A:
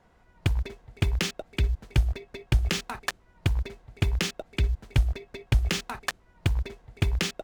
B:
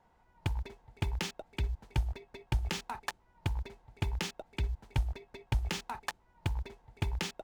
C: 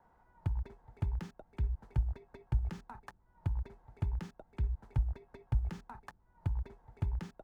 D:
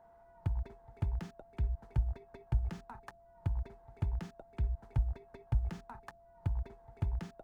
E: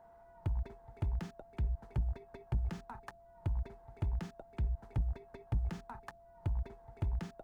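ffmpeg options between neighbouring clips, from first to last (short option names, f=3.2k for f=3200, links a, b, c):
-af "equalizer=f=880:t=o:w=0.29:g=12,volume=-8.5dB"
-filter_complex "[0:a]acrossover=split=230[a][b];[b]acompressor=threshold=-53dB:ratio=2.5[c];[a][c]amix=inputs=2:normalize=0,highshelf=f=2k:t=q:w=1.5:g=-8"
-af "aeval=exprs='val(0)+0.00112*sin(2*PI*680*n/s)':c=same"
-af "asoftclip=type=tanh:threshold=-28dB,volume=1.5dB"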